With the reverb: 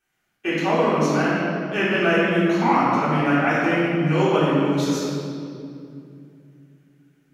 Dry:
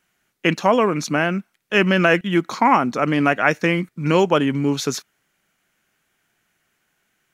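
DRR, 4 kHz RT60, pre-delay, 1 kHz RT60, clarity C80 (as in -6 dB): -11.0 dB, 1.7 s, 3 ms, 2.2 s, -1.0 dB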